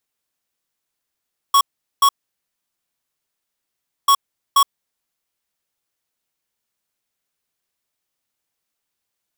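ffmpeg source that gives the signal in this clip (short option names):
-f lavfi -i "aevalsrc='0.251*(2*lt(mod(1110*t,1),0.5)-1)*clip(min(mod(mod(t,2.54),0.48),0.07-mod(mod(t,2.54),0.48))/0.005,0,1)*lt(mod(t,2.54),0.96)':d=5.08:s=44100"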